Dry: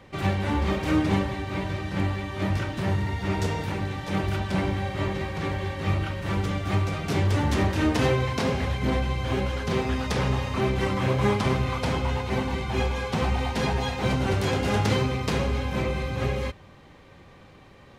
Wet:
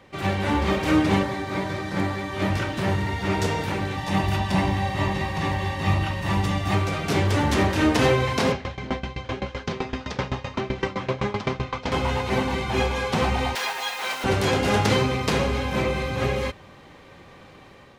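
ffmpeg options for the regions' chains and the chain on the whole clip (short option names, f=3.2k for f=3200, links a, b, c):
-filter_complex "[0:a]asettb=1/sr,asplit=3[a][b][c];[a]atrim=end=1.234[d];[b]atrim=start=1.23:end=2.33,asetpts=PTS-STARTPTS,afade=t=in:d=0.004:c=qsin,afade=t=out:st=1.096:d=0.004:c=qsin,highpass=100,equalizer=f=2.8k:t=o:w=0.32:g=-8[e];[c]atrim=start=2.326[f];[d][e]acrossfade=d=0.004:c1=hsin:c2=qsin[g];[g][f]acrossfade=d=0.004:c1=qsin:c2=hsin,asettb=1/sr,asplit=3[h][i][j];[h]atrim=end=3.974[k];[i]atrim=start=3.97:end=6.74,asetpts=PTS-STARTPTS,afade=t=in:d=0.004:c=qsin,afade=t=out:st=2.766:d=0.004:c=qsin,equalizer=f=1.6k:t=o:w=0.21:g=-5.5,aecho=1:1:1.1:0.49,atrim=end_sample=122157[l];[j]atrim=start=6.736[m];[k][l]acrossfade=d=0.004:c1=hsin:c2=qsin[n];[n][m]acrossfade=d=0.004:c1=qsin:c2=hsin,asettb=1/sr,asplit=3[o][p][q];[o]atrim=end=8.524[r];[p]atrim=start=8.52:end=11.92,asetpts=PTS-STARTPTS,afade=t=in:d=0.004:c=qsin,afade=t=out:st=3.396:d=0.004:c=qsin,lowpass=f=6.5k:w=0.5412,lowpass=f=6.5k:w=1.3066,aeval=exprs='val(0)*pow(10,-20*if(lt(mod(7.8*n/s,1),2*abs(7.8)/1000),1-mod(7.8*n/s,1)/(2*abs(7.8)/1000),(mod(7.8*n/s,1)-2*abs(7.8)/1000)/(1-2*abs(7.8)/1000))/20)':c=same[s];[q]atrim=start=11.916[t];[r][s]acrossfade=d=0.004:c1=hsin:c2=qsin[u];[u][t]acrossfade=d=0.004:c1=qsin:c2=hsin,asettb=1/sr,asplit=3[v][w][x];[v]atrim=end=13.554[y];[w]atrim=start=13.55:end=14.24,asetpts=PTS-STARTPTS,afade=t=in:d=0.004:c=qsin,afade=t=out:st=0.686:d=0.004:c=qsin,highpass=1k,acrusher=bits=8:dc=4:mix=0:aa=0.000001[z];[x]atrim=start=14.236[aa];[y][z]acrossfade=d=0.004:c1=hsin:c2=qsin[ab];[ab][aa]acrossfade=d=0.004:c1=qsin:c2=hsin,lowshelf=f=160:g=-7,dynaudnorm=f=110:g=5:m=5dB"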